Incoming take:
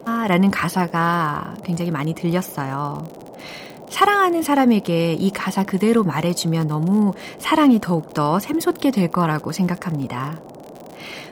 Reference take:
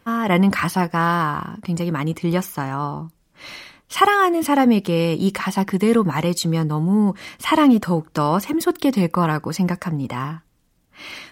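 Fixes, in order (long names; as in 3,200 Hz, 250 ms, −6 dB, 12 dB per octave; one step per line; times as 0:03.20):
clipped peaks rebuilt −6 dBFS
click removal
noise reduction from a noise print 13 dB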